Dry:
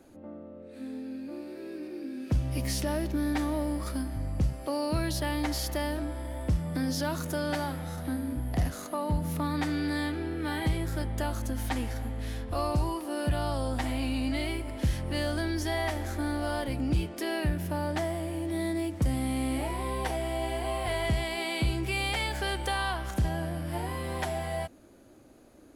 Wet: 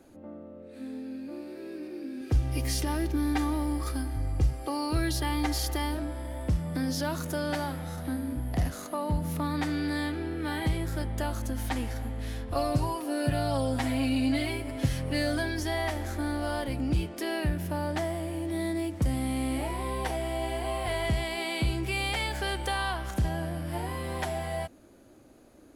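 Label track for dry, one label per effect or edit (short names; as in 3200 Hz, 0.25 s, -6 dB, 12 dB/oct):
2.210000	5.950000	comb 2.5 ms
12.550000	15.600000	comb 7.3 ms, depth 83%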